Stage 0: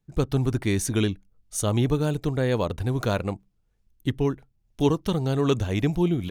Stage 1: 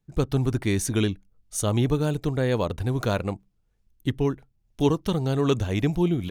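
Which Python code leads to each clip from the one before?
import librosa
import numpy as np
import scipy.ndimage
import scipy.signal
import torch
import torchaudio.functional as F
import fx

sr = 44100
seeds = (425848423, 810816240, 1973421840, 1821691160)

y = x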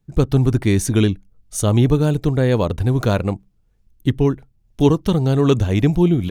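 y = fx.low_shelf(x, sr, hz=430.0, db=5.0)
y = y * 10.0 ** (4.0 / 20.0)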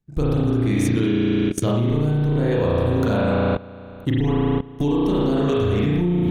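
y = fx.rev_spring(x, sr, rt60_s=1.9, pass_ms=(34,), chirp_ms=25, drr_db=-8.0)
y = fx.level_steps(y, sr, step_db=19)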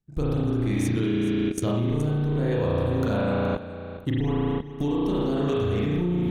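y = x + 10.0 ** (-13.5 / 20.0) * np.pad(x, (int(421 * sr / 1000.0), 0))[:len(x)]
y = y * 10.0 ** (-5.0 / 20.0)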